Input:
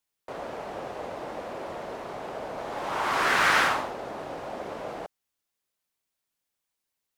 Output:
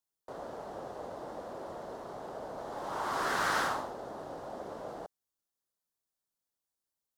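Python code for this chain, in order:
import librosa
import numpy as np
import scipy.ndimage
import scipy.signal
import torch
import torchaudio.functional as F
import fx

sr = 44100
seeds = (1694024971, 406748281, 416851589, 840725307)

y = fx.peak_eq(x, sr, hz=2400.0, db=-13.0, octaves=0.77)
y = y * librosa.db_to_amplitude(-5.5)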